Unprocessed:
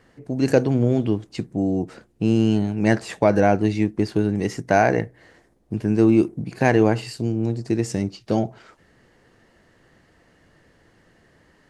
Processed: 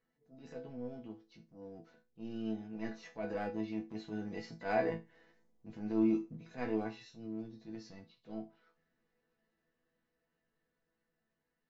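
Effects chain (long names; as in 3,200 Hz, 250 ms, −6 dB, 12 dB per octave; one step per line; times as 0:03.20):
hearing-aid frequency compression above 3,000 Hz 1.5 to 1
source passing by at 0:04.97, 7 m/s, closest 9.8 metres
transient designer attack −12 dB, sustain 0 dB
resonators tuned to a chord E3 sus4, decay 0.24 s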